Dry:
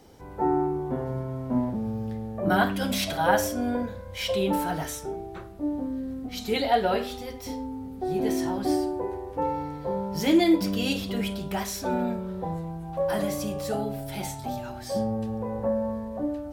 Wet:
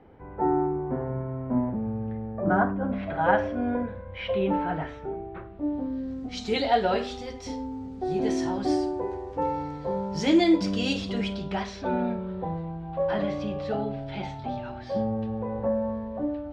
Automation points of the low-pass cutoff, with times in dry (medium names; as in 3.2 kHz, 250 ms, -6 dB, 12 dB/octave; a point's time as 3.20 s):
low-pass 24 dB/octave
2.29 s 2.3 kHz
2.79 s 1.2 kHz
3.29 s 2.6 kHz
5.42 s 2.6 kHz
6.23 s 7 kHz
11.09 s 7 kHz
11.85 s 3.7 kHz